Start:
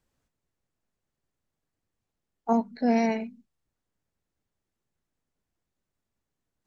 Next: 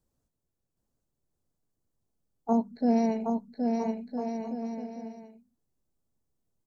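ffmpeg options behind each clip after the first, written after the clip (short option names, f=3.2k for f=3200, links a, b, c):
-filter_complex "[0:a]equalizer=f=2.2k:w=0.71:g=-14,asplit=2[a][b];[b]aecho=0:1:770|1309|1686|1950|2135:0.631|0.398|0.251|0.158|0.1[c];[a][c]amix=inputs=2:normalize=0"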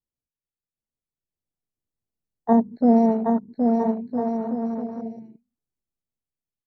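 -af "dynaudnorm=f=410:g=7:m=9.5dB,afwtdn=0.0316,volume=-1dB"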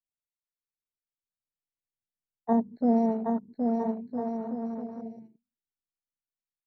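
-af "agate=range=-7dB:threshold=-43dB:ratio=16:detection=peak,volume=-7dB"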